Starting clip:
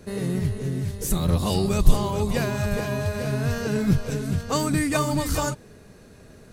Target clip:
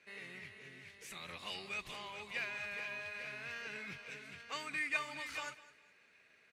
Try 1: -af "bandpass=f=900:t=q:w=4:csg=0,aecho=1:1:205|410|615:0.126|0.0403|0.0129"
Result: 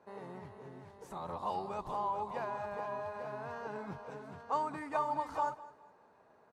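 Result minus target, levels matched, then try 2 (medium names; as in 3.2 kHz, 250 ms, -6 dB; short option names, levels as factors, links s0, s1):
2 kHz band -12.5 dB
-af "bandpass=f=2300:t=q:w=4:csg=0,aecho=1:1:205|410|615:0.126|0.0403|0.0129"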